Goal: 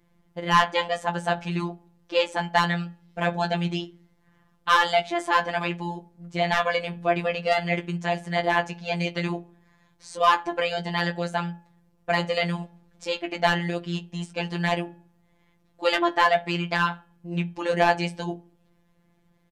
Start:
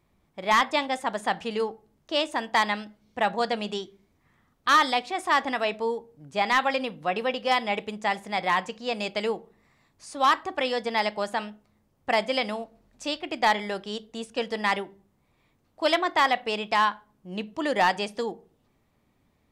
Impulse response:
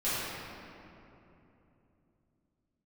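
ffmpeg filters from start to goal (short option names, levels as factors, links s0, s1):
-filter_complex "[0:a]bass=f=250:g=4,treble=f=4000:g=-2,asetrate=40440,aresample=44100,atempo=1.09051,asplit=2[s0][s1];[s1]adelay=15,volume=0.422[s2];[s0][s2]amix=inputs=2:normalize=0,afftfilt=real='hypot(re,im)*cos(PI*b)':imag='0':win_size=1024:overlap=0.75,bandreject=f=284.2:t=h:w=4,bandreject=f=568.4:t=h:w=4,bandreject=f=852.6:t=h:w=4,bandreject=f=1136.8:t=h:w=4,bandreject=f=1421:t=h:w=4,bandreject=f=1705.2:t=h:w=4,bandreject=f=1989.4:t=h:w=4,bandreject=f=2273.6:t=h:w=4,bandreject=f=2557.8:t=h:w=4,bandreject=f=2842:t=h:w=4,bandreject=f=3126.2:t=h:w=4,volume=1.68"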